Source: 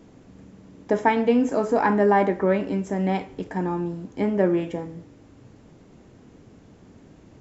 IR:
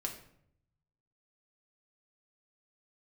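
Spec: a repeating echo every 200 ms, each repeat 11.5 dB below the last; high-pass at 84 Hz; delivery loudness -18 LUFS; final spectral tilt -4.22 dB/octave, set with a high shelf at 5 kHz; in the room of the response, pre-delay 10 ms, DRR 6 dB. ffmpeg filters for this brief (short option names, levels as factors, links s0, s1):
-filter_complex "[0:a]highpass=84,highshelf=f=5000:g=-6.5,aecho=1:1:200|400|600:0.266|0.0718|0.0194,asplit=2[s0][s1];[1:a]atrim=start_sample=2205,adelay=10[s2];[s1][s2]afir=irnorm=-1:irlink=0,volume=0.473[s3];[s0][s3]amix=inputs=2:normalize=0,volume=1.41"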